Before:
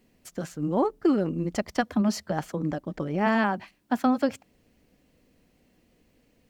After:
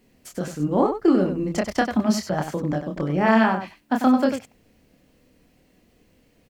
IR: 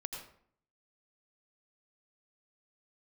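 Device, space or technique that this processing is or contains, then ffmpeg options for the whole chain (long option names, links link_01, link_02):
slapback doubling: -filter_complex "[0:a]asplit=3[link_01][link_02][link_03];[link_02]adelay=27,volume=-4dB[link_04];[link_03]adelay=95,volume=-8dB[link_05];[link_01][link_04][link_05]amix=inputs=3:normalize=0,volume=3dB"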